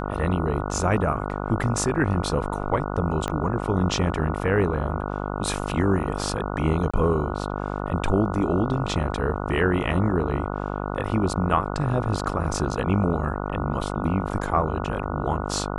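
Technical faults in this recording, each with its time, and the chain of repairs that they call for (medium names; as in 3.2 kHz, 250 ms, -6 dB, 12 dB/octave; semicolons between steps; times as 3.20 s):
buzz 50 Hz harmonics 29 -29 dBFS
3.28 s: pop -13 dBFS
6.91–6.93 s: dropout 25 ms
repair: de-click; de-hum 50 Hz, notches 29; interpolate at 6.91 s, 25 ms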